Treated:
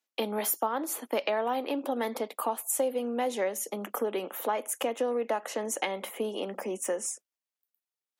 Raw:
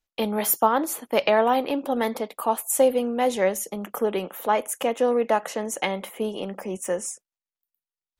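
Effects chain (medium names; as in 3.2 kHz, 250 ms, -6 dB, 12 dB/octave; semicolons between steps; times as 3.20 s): compression 3:1, threshold -28 dBFS, peak gain reduction 11.5 dB; steep high-pass 220 Hz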